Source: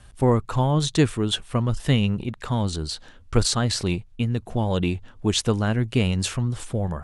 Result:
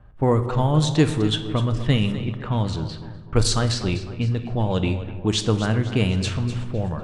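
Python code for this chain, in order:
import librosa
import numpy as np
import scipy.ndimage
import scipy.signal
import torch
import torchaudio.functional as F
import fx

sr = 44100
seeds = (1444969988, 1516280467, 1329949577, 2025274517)

y = fx.echo_feedback(x, sr, ms=251, feedback_pct=45, wet_db=-13.0)
y = fx.env_lowpass(y, sr, base_hz=1100.0, full_db=-15.0)
y = fx.room_shoebox(y, sr, seeds[0], volume_m3=530.0, walls='mixed', distance_m=0.5)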